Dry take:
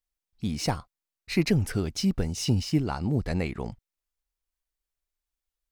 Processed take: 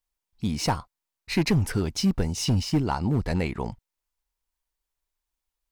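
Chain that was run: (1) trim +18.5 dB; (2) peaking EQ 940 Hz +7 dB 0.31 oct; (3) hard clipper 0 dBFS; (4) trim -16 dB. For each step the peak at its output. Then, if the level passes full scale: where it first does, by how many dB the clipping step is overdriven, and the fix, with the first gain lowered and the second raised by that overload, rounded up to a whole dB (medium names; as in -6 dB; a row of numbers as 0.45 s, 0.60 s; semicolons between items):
+7.0 dBFS, +7.0 dBFS, 0.0 dBFS, -16.0 dBFS; step 1, 7.0 dB; step 1 +11.5 dB, step 4 -9 dB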